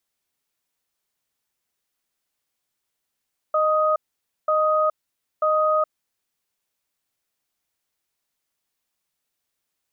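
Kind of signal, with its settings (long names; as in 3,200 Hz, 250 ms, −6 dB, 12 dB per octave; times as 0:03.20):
tone pair in a cadence 618 Hz, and 1,250 Hz, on 0.42 s, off 0.52 s, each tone −19.5 dBFS 2.52 s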